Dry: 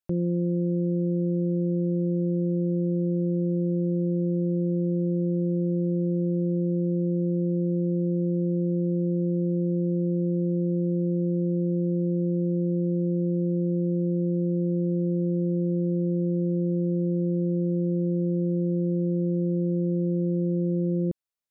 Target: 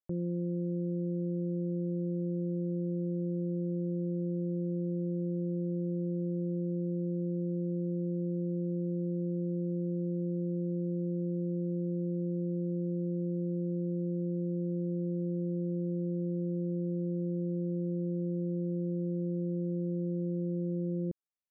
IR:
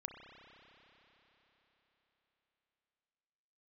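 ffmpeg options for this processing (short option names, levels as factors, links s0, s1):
-af "lowpass=1400,volume=0.398"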